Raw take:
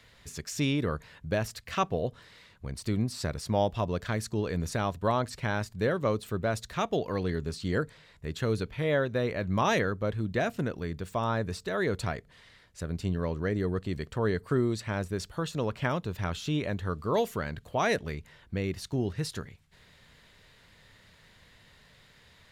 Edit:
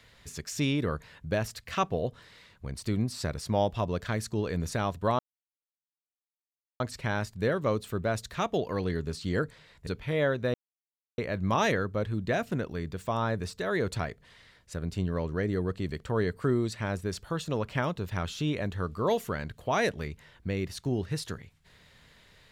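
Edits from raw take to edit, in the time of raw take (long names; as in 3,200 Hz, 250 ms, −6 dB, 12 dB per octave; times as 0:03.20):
0:05.19: splice in silence 1.61 s
0:08.26–0:08.58: remove
0:09.25: splice in silence 0.64 s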